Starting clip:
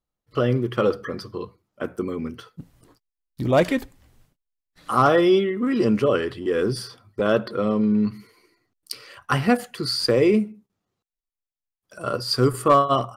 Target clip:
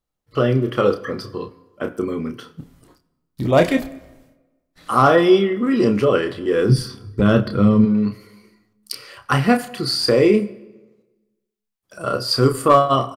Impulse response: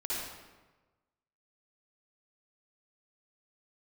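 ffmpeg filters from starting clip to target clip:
-filter_complex "[0:a]asplit=2[a][b];[b]adelay=30,volume=-7dB[c];[a][c]amix=inputs=2:normalize=0,asplit=2[d][e];[1:a]atrim=start_sample=2205[f];[e][f]afir=irnorm=-1:irlink=0,volume=-22dB[g];[d][g]amix=inputs=2:normalize=0,asplit=3[h][i][j];[h]afade=t=out:st=6.68:d=0.02[k];[i]asubboost=boost=7:cutoff=200,afade=t=in:st=6.68:d=0.02,afade=t=out:st=7.84:d=0.02[l];[j]afade=t=in:st=7.84:d=0.02[m];[k][l][m]amix=inputs=3:normalize=0,volume=2.5dB"

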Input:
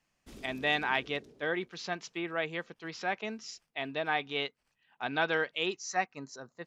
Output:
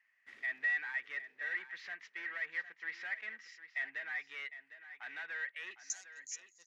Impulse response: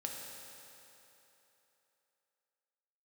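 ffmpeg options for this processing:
-af "alimiter=limit=-23.5dB:level=0:latency=1:release=323,asoftclip=type=tanh:threshold=-39dB,asetnsamples=n=441:p=0,asendcmd='5.9 bandpass f 6700',bandpass=f=1.9k:t=q:w=11:csg=0,aecho=1:1:755:0.224,volume=16dB"

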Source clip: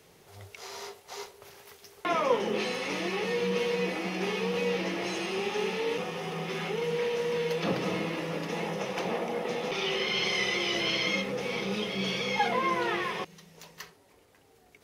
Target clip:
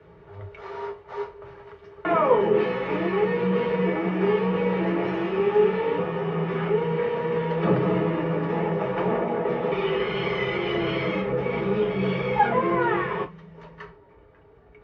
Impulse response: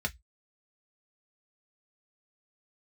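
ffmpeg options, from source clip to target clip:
-filter_complex "[0:a]lowpass=1.5k[a];[1:a]atrim=start_sample=2205,asetrate=28665,aresample=44100[b];[a][b]afir=irnorm=-1:irlink=0"

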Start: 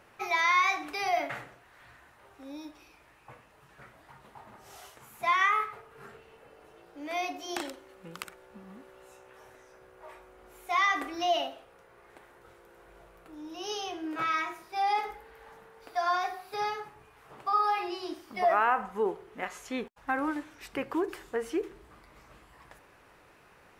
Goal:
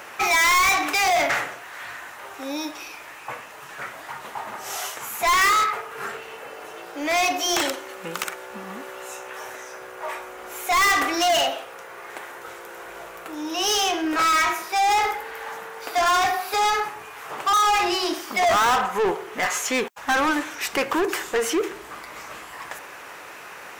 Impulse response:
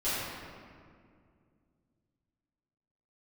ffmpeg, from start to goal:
-filter_complex "[0:a]asplit=2[a][b];[b]highpass=f=720:p=1,volume=26dB,asoftclip=type=tanh:threshold=-13.5dB[c];[a][c]amix=inputs=2:normalize=0,lowpass=f=1.5k:p=1,volume=-6dB,aexciter=amount=1.5:drive=7.9:freq=5.9k,highshelf=f=2.1k:g=11"

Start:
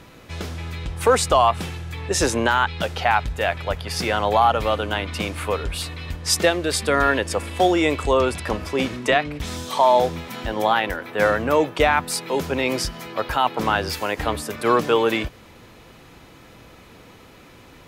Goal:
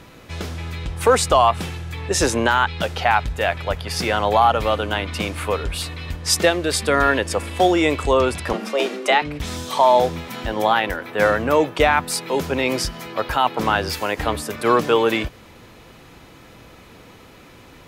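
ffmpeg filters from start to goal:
-filter_complex "[0:a]asettb=1/sr,asplit=3[a][b][c];[a]atrim=end=8.534[d];[b]atrim=start=8.53:end=9.22,asetpts=PTS-STARTPTS,afade=t=in:d=0.004:c=qsin,afade=t=out:st=0.686:d=0.004:c=qsin,afreqshift=140[e];[c]atrim=start=9.216[f];[d][e]acrossfade=d=0.004:c1=hsin:c2=qsin[g];[g][f]acrossfade=d=0.004:c1=qsin:c2=hsin,volume=1.5dB"

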